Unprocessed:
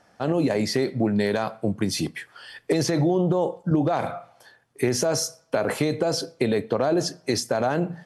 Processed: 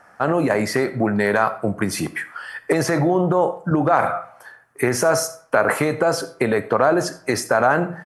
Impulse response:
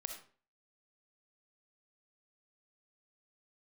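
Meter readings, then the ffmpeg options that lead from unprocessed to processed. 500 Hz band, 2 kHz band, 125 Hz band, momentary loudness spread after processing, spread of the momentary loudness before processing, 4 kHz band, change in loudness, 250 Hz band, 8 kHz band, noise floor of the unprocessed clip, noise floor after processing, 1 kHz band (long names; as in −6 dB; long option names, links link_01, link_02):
+4.5 dB, +10.5 dB, +1.5 dB, 7 LU, 6 LU, −1.5 dB, +4.5 dB, +2.0 dB, +2.5 dB, −60 dBFS, −51 dBFS, +9.5 dB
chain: -filter_complex "[0:a]firequalizer=gain_entry='entry(280,0);entry(1300,13);entry(3500,-6);entry(9300,5)':delay=0.05:min_phase=1,asplit=2[link_01][link_02];[1:a]atrim=start_sample=2205[link_03];[link_02][link_03]afir=irnorm=-1:irlink=0,volume=-4.5dB[link_04];[link_01][link_04]amix=inputs=2:normalize=0,volume=-1.5dB"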